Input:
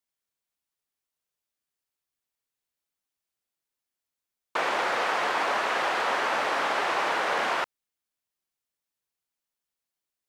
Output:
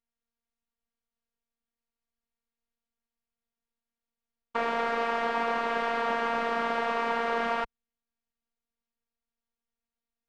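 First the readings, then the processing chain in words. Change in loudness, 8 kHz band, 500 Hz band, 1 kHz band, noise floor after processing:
-2.5 dB, under -10 dB, +0.5 dB, -2.0 dB, under -85 dBFS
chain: robotiser 232 Hz; RIAA curve playback

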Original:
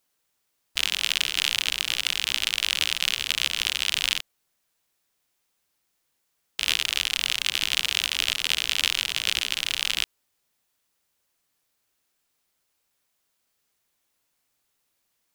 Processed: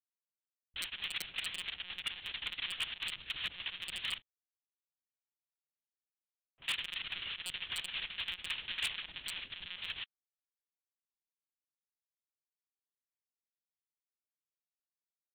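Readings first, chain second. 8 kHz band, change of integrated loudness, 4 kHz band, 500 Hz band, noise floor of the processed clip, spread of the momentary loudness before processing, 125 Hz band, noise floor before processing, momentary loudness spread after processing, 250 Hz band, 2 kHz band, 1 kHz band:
-21.0 dB, -15.0 dB, -15.0 dB, -13.5 dB, under -85 dBFS, 3 LU, -10.0 dB, -75 dBFS, 6 LU, -11.0 dB, -13.0 dB, -13.0 dB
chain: per-bin expansion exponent 3; low-pass opened by the level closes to 350 Hz, open at -35.5 dBFS; monotone LPC vocoder at 8 kHz 180 Hz; bell 1700 Hz +2.5 dB 0.88 oct; wavefolder -23.5 dBFS; gain -3.5 dB

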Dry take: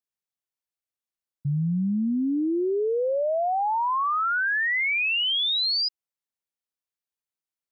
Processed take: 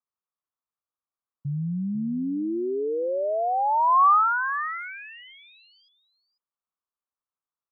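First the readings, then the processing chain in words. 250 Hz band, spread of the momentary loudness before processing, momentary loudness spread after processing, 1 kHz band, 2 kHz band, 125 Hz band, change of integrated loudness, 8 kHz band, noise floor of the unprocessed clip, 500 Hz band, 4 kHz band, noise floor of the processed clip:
-3.0 dB, 4 LU, 16 LU, +4.5 dB, -7.0 dB, -3.5 dB, 0.0 dB, n/a, under -85 dBFS, -1.5 dB, under -25 dB, under -85 dBFS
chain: ladder low-pass 1300 Hz, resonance 65%; echo 0.494 s -13 dB; gain +7.5 dB

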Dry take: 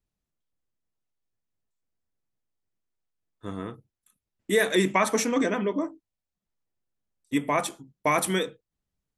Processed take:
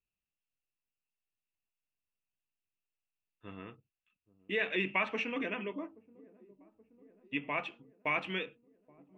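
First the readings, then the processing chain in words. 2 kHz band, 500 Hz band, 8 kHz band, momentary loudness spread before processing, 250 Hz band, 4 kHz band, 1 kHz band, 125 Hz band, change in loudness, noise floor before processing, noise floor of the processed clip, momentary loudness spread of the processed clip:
-4.5 dB, -12.5 dB, under -30 dB, 14 LU, -13.0 dB, -9.0 dB, -11.5 dB, -13.0 dB, -9.0 dB, under -85 dBFS, under -85 dBFS, 17 LU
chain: ladder low-pass 2800 Hz, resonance 85%; dark delay 0.827 s, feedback 65%, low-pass 510 Hz, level -20.5 dB

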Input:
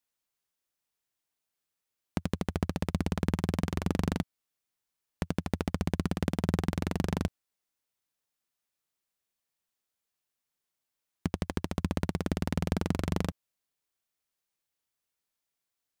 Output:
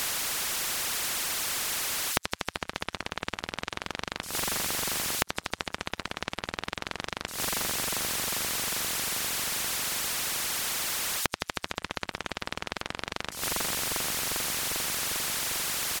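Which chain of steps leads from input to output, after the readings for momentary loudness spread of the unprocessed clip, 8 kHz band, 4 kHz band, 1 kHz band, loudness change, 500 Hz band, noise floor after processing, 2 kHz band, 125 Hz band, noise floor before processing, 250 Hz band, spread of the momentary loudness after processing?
6 LU, +22.0 dB, +17.0 dB, +7.0 dB, +3.5 dB, 0.0 dB, -59 dBFS, +12.5 dB, -11.0 dB, under -85 dBFS, -9.0 dB, 8 LU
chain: switching spikes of -24 dBFS; high shelf 7000 Hz -10.5 dB; power-law curve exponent 1.4; echo 0.445 s -18.5 dB; reverb removal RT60 0.63 s; LPF 10000 Hz 12 dB/oct; bell 1400 Hz +14.5 dB 2.4 oct; dark delay 0.399 s, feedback 65%, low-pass 1700 Hz, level -17 dB; flipped gate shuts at -17 dBFS, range -29 dB; spectral compressor 4:1; gain +2.5 dB

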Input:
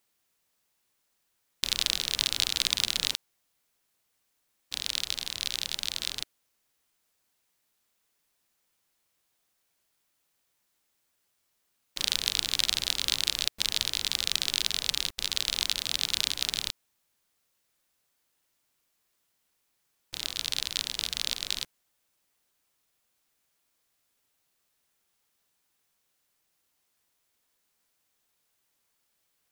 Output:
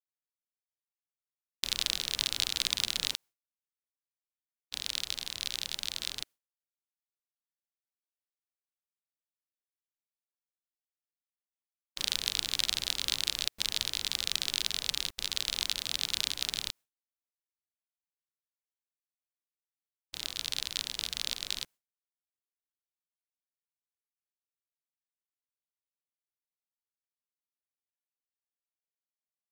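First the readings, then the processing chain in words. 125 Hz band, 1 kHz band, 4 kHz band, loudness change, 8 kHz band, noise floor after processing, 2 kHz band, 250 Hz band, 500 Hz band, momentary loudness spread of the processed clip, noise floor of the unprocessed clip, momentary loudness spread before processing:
-3.5 dB, -3.5 dB, -3.5 dB, -3.5 dB, -3.5 dB, under -85 dBFS, -3.5 dB, -3.5 dB, -3.5 dB, 8 LU, -76 dBFS, 8 LU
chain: expander -45 dBFS; gain -3.5 dB

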